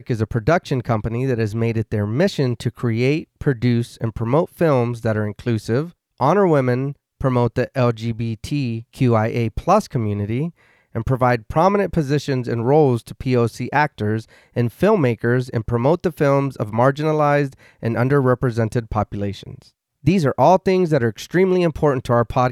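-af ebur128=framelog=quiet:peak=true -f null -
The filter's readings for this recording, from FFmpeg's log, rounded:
Integrated loudness:
  I:         -19.6 LUFS
  Threshold: -29.7 LUFS
Loudness range:
  LRA:         2.1 LU
  Threshold: -39.8 LUFS
  LRA low:   -20.9 LUFS
  LRA high:  -18.8 LUFS
True peak:
  Peak:       -3.2 dBFS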